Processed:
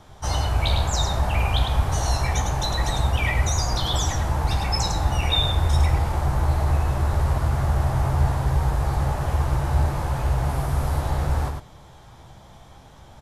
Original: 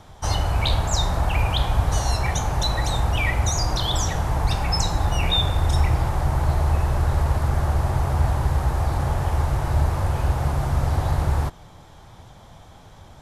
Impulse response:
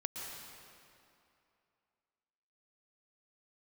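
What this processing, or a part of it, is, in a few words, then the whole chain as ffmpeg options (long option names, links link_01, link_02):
slapback doubling: -filter_complex "[0:a]asettb=1/sr,asplit=3[link_01][link_02][link_03];[link_01]atrim=end=10.494[link_04];[link_02]atrim=start=10.49:end=11,asetpts=PTS-STARTPTS,afade=type=in:duration=0.004:curve=qsin,afade=type=out:start_time=0.506:duration=0.004:curve=qsin,equalizer=frequency=11000:width=1.8:gain=6.5[link_05];[link_03]atrim=start=10.996[link_06];[link_04][link_05]acrossfade=duration=0.004:curve1=hsin:curve2=qsin[link_07];[link_07][link_06]acrossfade=duration=0.004:curve1=qsin:curve2=hsin,asplit=3[link_08][link_09][link_10];[link_09]adelay=15,volume=-4.5dB[link_11];[link_10]adelay=104,volume=-4dB[link_12];[link_08][link_11][link_12]amix=inputs=3:normalize=0,volume=-3dB"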